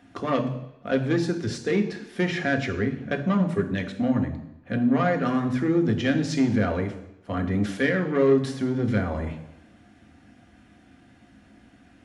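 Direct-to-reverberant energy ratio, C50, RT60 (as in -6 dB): 4.5 dB, 10.5 dB, 0.85 s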